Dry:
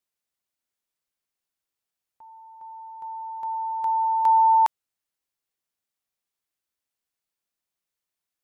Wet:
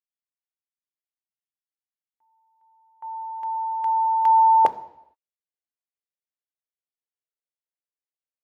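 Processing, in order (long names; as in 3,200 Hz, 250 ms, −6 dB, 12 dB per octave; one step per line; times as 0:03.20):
noise gate with hold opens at −34 dBFS
parametric band 530 Hz −8 dB 0.87 octaves, from 0:04.65 +7.5 dB
convolution reverb RT60 0.85 s, pre-delay 3 ms, DRR 13 dB
level −4 dB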